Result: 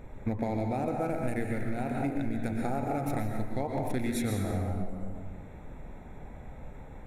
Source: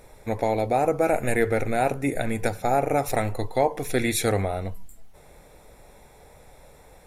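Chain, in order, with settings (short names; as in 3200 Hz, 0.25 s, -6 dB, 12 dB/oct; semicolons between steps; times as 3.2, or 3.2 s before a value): Wiener smoothing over 9 samples; resonant low shelf 340 Hz +6.5 dB, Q 1.5; plate-style reverb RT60 1.3 s, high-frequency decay 0.7×, pre-delay 0.105 s, DRR 1.5 dB; compressor 12:1, threshold -27 dBFS, peak gain reduction 15.5 dB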